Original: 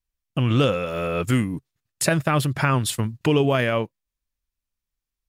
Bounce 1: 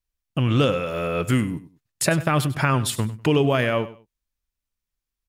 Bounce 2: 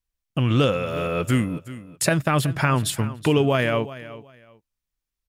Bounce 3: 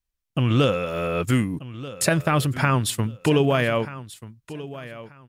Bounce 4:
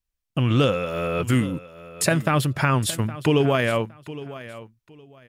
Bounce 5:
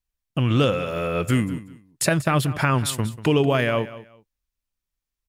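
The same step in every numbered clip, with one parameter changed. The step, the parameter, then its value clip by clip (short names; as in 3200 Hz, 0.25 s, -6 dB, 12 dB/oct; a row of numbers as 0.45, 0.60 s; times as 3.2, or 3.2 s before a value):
feedback echo, time: 99, 373, 1235, 814, 189 ms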